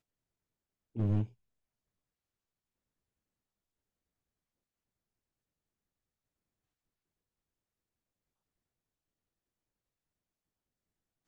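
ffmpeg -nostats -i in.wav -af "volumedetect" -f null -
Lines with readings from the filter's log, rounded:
mean_volume: -45.1 dB
max_volume: -19.1 dB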